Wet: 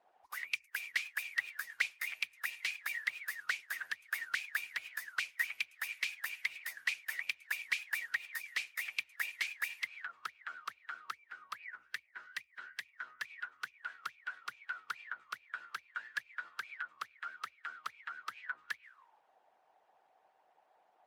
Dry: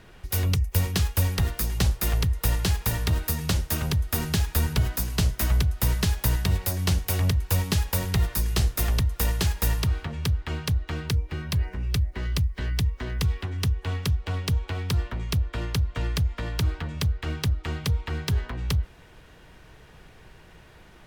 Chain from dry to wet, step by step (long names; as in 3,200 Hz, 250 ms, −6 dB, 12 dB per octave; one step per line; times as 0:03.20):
envelope filter 710–2,400 Hz, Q 19, up, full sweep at −20 dBFS
harmonic and percussive parts rebalanced harmonic −16 dB
RIAA equalisation recording
level +10.5 dB